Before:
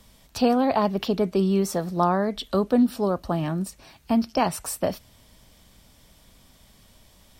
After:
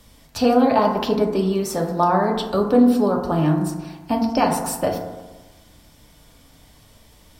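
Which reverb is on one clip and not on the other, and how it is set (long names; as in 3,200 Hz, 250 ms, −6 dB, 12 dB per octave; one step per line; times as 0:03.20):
feedback delay network reverb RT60 1.2 s, low-frequency decay 1×, high-frequency decay 0.3×, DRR 1 dB
level +2 dB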